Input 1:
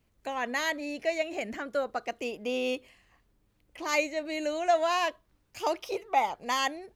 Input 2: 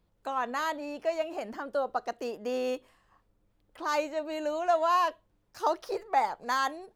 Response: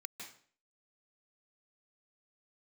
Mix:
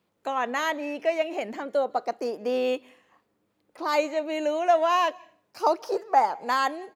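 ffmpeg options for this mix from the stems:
-filter_complex "[0:a]volume=0.631,asplit=2[s0][s1];[s1]volume=0.188[s2];[1:a]adelay=0.5,volume=1.33,asplit=2[s3][s4];[s4]volume=0.112[s5];[2:a]atrim=start_sample=2205[s6];[s2][s5]amix=inputs=2:normalize=0[s7];[s7][s6]afir=irnorm=-1:irlink=0[s8];[s0][s3][s8]amix=inputs=3:normalize=0,highpass=190,bass=f=250:g=-2,treble=f=4000:g=-3"

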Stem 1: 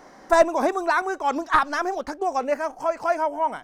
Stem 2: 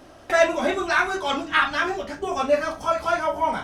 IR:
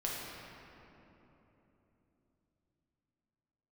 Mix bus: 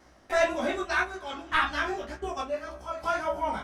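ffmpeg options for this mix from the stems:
-filter_complex "[0:a]equalizer=f=610:t=o:w=1.5:g=-11.5,aeval=exprs='val(0)*pow(10,-39*if(lt(mod(0.66*n/s,1),2*abs(0.66)/1000),1-mod(0.66*n/s,1)/(2*abs(0.66)/1000),(mod(0.66*n/s,1)-2*abs(0.66)/1000)/(1-2*abs(0.66)/1000))/20)':c=same,volume=0.75,asplit=2[s0][s1];[1:a]equalizer=f=63:t=o:w=0.25:g=15,volume=0.668,asplit=2[s2][s3];[s3]volume=0.0668[s4];[s1]apad=whole_len=160170[s5];[s2][s5]sidechaingate=range=0.398:threshold=0.00178:ratio=16:detection=peak[s6];[2:a]atrim=start_sample=2205[s7];[s4][s7]afir=irnorm=-1:irlink=0[s8];[s0][s6][s8]amix=inputs=3:normalize=0,flanger=delay=15.5:depth=3.6:speed=1.8"

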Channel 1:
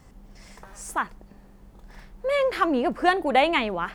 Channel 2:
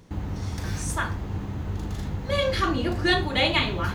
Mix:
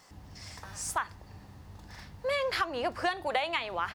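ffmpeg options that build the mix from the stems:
-filter_complex "[0:a]highpass=640,equalizer=f=4800:t=o:w=0.74:g=7.5,volume=1.06[s0];[1:a]lowshelf=f=170:g=-4.5,aecho=1:1:1.1:0.39,volume=0.126[s1];[s0][s1]amix=inputs=2:normalize=0,acompressor=threshold=0.0501:ratio=10"

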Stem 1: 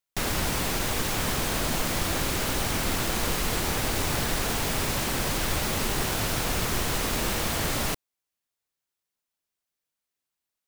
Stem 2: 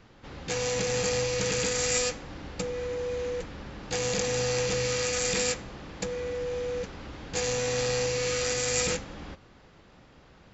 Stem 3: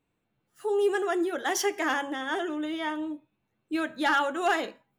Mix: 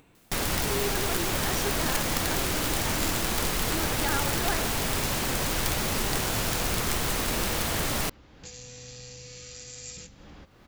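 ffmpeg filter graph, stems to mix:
-filter_complex "[0:a]aeval=exprs='(mod(7.5*val(0)+1,2)-1)/7.5':c=same,adelay=150,volume=0.944[s0];[1:a]acrossover=split=230|3000[s1][s2][s3];[s2]acompressor=threshold=0.00708:ratio=4[s4];[s1][s4][s3]amix=inputs=3:normalize=0,adelay=1100,volume=0.251[s5];[2:a]volume=0.398[s6];[s0][s5][s6]amix=inputs=3:normalize=0,acompressor=mode=upward:threshold=0.0112:ratio=2.5"

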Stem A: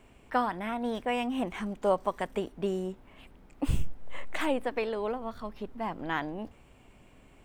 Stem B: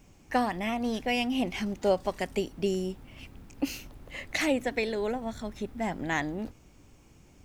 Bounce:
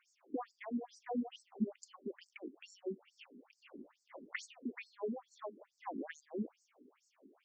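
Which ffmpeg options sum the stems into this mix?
-filter_complex "[0:a]lowpass=f=1500:w=0.5412,lowpass=f=1500:w=1.3066,lowshelf=f=280:g=11.5,volume=0.596[s0];[1:a]equalizer=f=4000:w=6.4:g=-15,volume=0.668[s1];[s0][s1]amix=inputs=2:normalize=0,acrossover=split=230[s2][s3];[s3]acompressor=threshold=0.0158:ratio=3[s4];[s2][s4]amix=inputs=2:normalize=0,afftfilt=real='re*between(b*sr/1024,290*pow(6000/290,0.5+0.5*sin(2*PI*2.3*pts/sr))/1.41,290*pow(6000/290,0.5+0.5*sin(2*PI*2.3*pts/sr))*1.41)':imag='im*between(b*sr/1024,290*pow(6000/290,0.5+0.5*sin(2*PI*2.3*pts/sr))/1.41,290*pow(6000/290,0.5+0.5*sin(2*PI*2.3*pts/sr))*1.41)':win_size=1024:overlap=0.75"

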